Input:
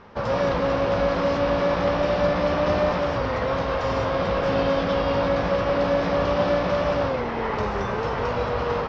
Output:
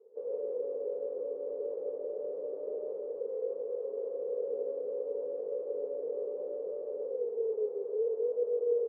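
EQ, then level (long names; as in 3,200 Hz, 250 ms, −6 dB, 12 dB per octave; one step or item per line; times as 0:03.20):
flat-topped band-pass 450 Hz, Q 5.9
0.0 dB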